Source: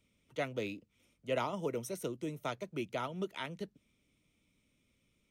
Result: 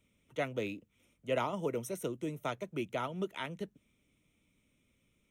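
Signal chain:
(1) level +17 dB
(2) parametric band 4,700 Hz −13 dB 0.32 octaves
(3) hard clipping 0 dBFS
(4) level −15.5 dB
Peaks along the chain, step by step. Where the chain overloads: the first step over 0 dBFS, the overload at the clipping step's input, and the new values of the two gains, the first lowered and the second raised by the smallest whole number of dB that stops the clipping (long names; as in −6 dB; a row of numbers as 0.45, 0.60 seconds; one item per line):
−4.5, −5.0, −5.0, −20.5 dBFS
no step passes full scale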